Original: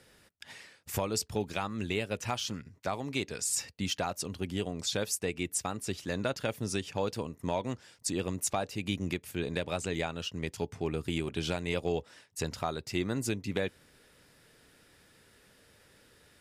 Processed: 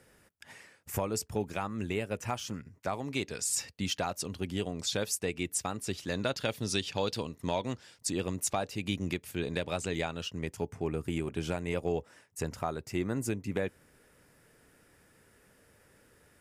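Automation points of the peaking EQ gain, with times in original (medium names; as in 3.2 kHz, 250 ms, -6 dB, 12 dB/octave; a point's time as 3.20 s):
peaking EQ 3.9 kHz 1 oct
2.63 s -9 dB
3.30 s 0 dB
5.84 s 0 dB
6.75 s +9 dB
7.28 s +9 dB
8.07 s 0 dB
10.19 s 0 dB
10.59 s -10.5 dB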